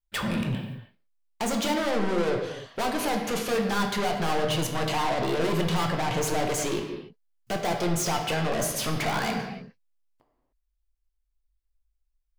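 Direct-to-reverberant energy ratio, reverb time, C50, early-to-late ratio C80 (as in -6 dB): 1.5 dB, not exponential, 4.5 dB, 6.0 dB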